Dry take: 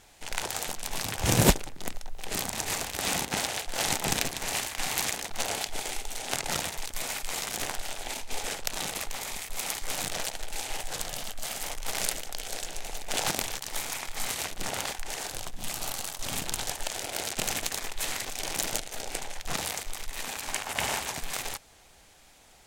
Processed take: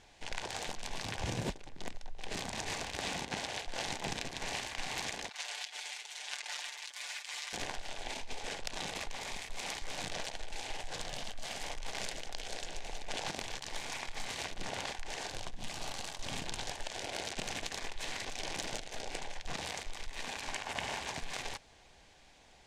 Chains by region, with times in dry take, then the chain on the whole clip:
5.29–7.53 HPF 1300 Hz + compressor 1.5:1, threshold -39 dBFS + comb 6.8 ms, depth 67%
whole clip: LPF 5500 Hz 12 dB/oct; notch 1300 Hz, Q 7.8; compressor 8:1, threshold -31 dBFS; gain -2.5 dB

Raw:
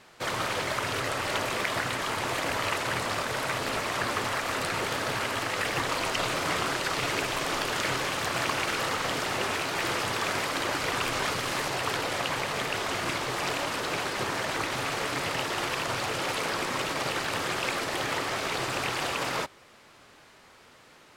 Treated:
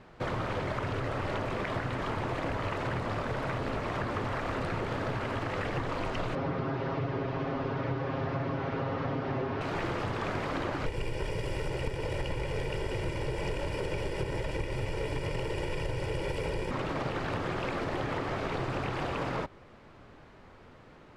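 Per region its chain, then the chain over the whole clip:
6.35–9.61 delta modulation 32 kbps, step -43 dBFS + HPF 72 Hz + comb 7.4 ms, depth 87%
10.86–16.71 minimum comb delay 0.39 ms + bell 9800 Hz +9 dB 0.74 oct + comb 2.1 ms, depth 67%
whole clip: LPF 3300 Hz 6 dB/oct; tilt -3 dB/oct; compressor, threshold -29 dBFS

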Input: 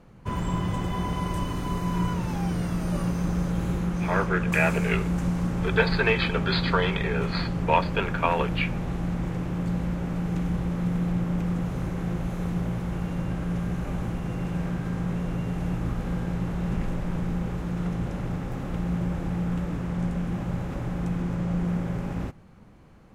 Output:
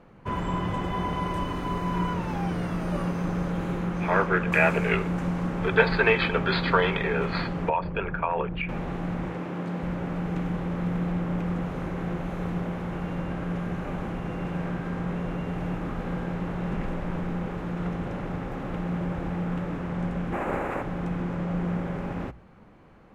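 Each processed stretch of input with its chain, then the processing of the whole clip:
7.69–8.69 formant sharpening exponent 1.5 + bell 250 Hz -8 dB 0.42 oct + compressor 4:1, threshold -24 dBFS
9.27–9.83 HPF 170 Hz + Doppler distortion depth 0.13 ms
20.32–20.81 spectral limiter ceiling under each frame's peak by 17 dB + band shelf 4300 Hz -8.5 dB 1.2 oct
whole clip: tone controls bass -6 dB, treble -12 dB; notches 60/120 Hz; gain +3 dB

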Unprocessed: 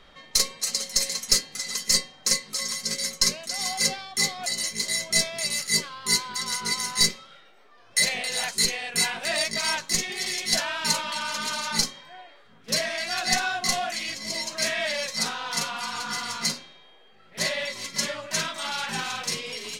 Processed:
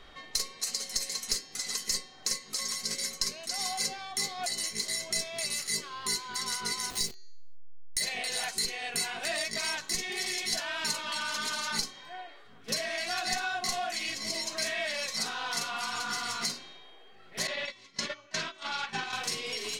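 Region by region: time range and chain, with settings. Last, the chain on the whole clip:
6.9–8.01 level-crossing sampler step -29.5 dBFS + bell 1300 Hz -9 dB 1.8 oct
17.47–19.13 LPF 4900 Hz + gate -32 dBFS, range -18 dB
whole clip: comb 2.7 ms, depth 35%; de-hum 381.8 Hz, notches 18; compressor 3:1, threshold -31 dBFS

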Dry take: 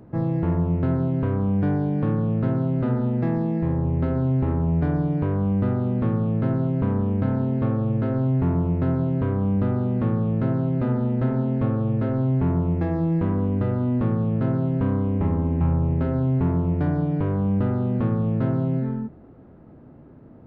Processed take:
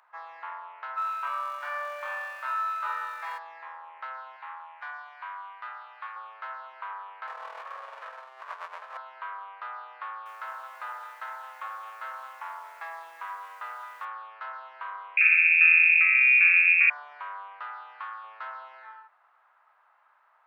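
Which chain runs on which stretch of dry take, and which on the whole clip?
0.96–3.37 comb 3.3 ms, depth 49% + crackle 420/s -47 dBFS + flutter echo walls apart 3.8 m, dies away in 1.1 s
4.36–6.16 HPF 810 Hz + notch 1300 Hz, Q 24 + doubler 45 ms -12 dB
7.27–8.97 minimum comb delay 1.7 ms + bell 490 Hz +9.5 dB 0.67 oct + negative-ratio compressor -24 dBFS, ratio -0.5
10.04–14.05 notch 380 Hz + lo-fi delay 0.218 s, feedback 55%, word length 8-bit, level -11 dB
15.17–16.9 inverted band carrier 2600 Hz + Butterworth band-stop 960 Hz, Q 2.1
17.63–18.24 bell 590 Hz -8.5 dB 0.28 oct + notch 440 Hz, Q 6.4 + doubler 37 ms -14 dB
whole clip: steep high-pass 1000 Hz 36 dB/oct; high shelf 2400 Hz -9.5 dB; gain +6.5 dB

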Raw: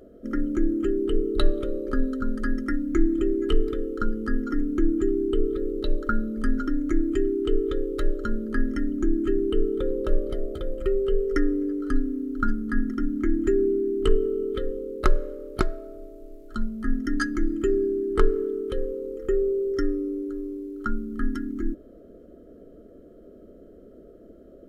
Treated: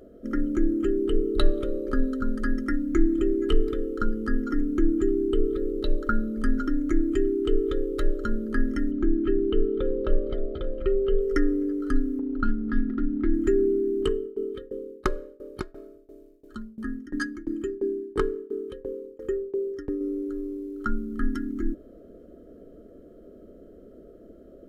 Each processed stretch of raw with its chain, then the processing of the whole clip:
8.91–11.21 LPF 4100 Hz 24 dB/oct + notch 1900 Hz, Q 27 + echo 0.575 s -22 dB
12.19–13.33 median filter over 15 samples + air absorption 310 m + upward compressor, threshold -24 dBFS
14.02–20.01 tremolo saw down 2.9 Hz, depth 95% + notch comb 680 Hz
whole clip: dry

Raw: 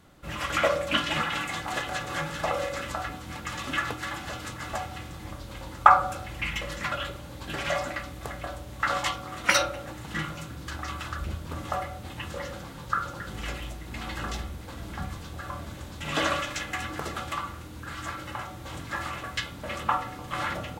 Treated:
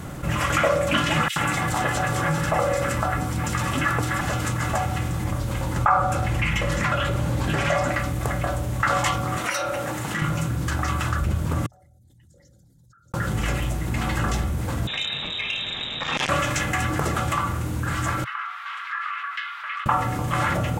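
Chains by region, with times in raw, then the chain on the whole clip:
1.28–4.21 notch 6600 Hz, Q 20 + bands offset in time highs, lows 80 ms, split 3000 Hz
5.76–7.92 high shelf 9400 Hz -7.5 dB + upward compressor, threshold -27 dBFS
9.38–10.22 HPF 360 Hz 6 dB/oct + compressor 5:1, threshold -32 dBFS + core saturation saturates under 940 Hz
11.66–13.14 formant sharpening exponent 2 + inverse Chebyshev high-pass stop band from 2900 Hz, stop band 60 dB + air absorption 290 m
14.87–16.29 HPF 65 Hz + inverted band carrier 3800 Hz + core saturation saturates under 3800 Hz
18.24–19.86 elliptic high-pass 1200 Hz, stop band 70 dB + compressor 1.5:1, threshold -41 dBFS + air absorption 380 m
whole clip: ten-band EQ 125 Hz +8 dB, 4000 Hz -7 dB, 8000 Hz +3 dB; maximiser +10 dB; fast leveller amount 50%; gain -8.5 dB

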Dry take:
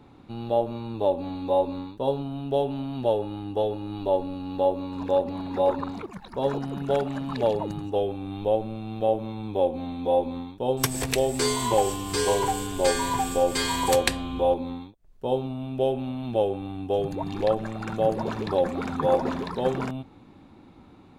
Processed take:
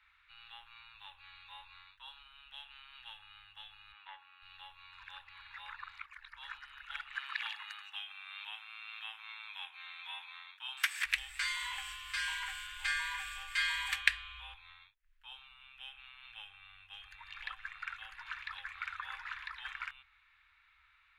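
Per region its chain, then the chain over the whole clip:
3.92–4.42 BPF 260–2300 Hz + transient shaper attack +6 dB, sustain +1 dB
7.14–11.04 spectral limiter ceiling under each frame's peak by 15 dB + HPF 190 Hz 24 dB/oct
whole clip: inverse Chebyshev band-stop 160–640 Hz, stop band 60 dB; three-band isolator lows -21 dB, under 310 Hz, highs -23 dB, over 2500 Hz; gain +5.5 dB

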